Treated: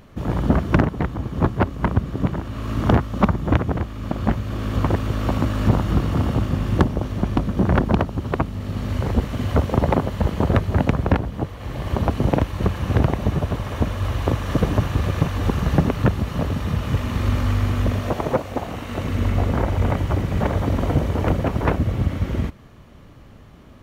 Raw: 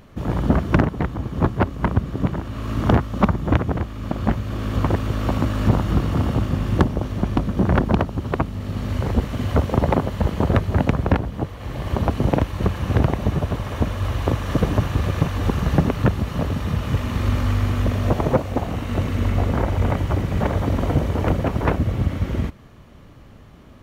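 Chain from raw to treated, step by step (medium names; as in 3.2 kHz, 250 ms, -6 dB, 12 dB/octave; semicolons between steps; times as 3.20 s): 18.00–19.05 s: bass shelf 240 Hz -8 dB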